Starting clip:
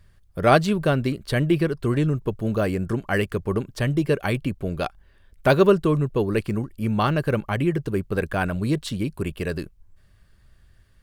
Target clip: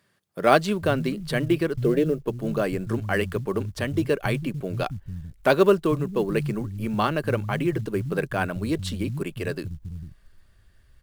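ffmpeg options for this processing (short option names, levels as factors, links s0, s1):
-filter_complex "[0:a]asettb=1/sr,asplit=3[s0][s1][s2];[s0]atrim=end=1.784[s3];[s1]atrim=start=1.78:end=2.27,asetpts=PTS-STARTPTS,afade=t=in:d=0.004:c=qsin,afade=t=out:st=0.486:d=0.004:c=qsin,equalizer=f=125:t=o:w=1:g=-7,equalizer=f=500:t=o:w=1:g=12,equalizer=f=1000:t=o:w=1:g=-10,equalizer=f=8000:t=o:w=1:g=-10[s4];[s2]atrim=start=2.266[s5];[s3][s4]acrossfade=d=0.004:c1=hsin:c2=qsin[s6];[s6][s5]acrossfade=d=0.004:c1=qsin:c2=hsin,acrossover=split=160[s7][s8];[s7]adelay=450[s9];[s9][s8]amix=inputs=2:normalize=0,acrusher=bits=8:mode=log:mix=0:aa=0.000001,volume=0.891"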